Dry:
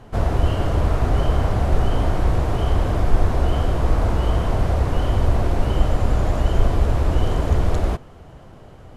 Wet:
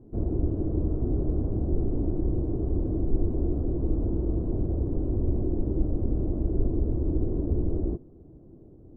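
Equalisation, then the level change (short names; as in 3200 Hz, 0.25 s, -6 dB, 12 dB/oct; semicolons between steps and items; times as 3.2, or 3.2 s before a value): synth low-pass 330 Hz, resonance Q 3.6; -9.0 dB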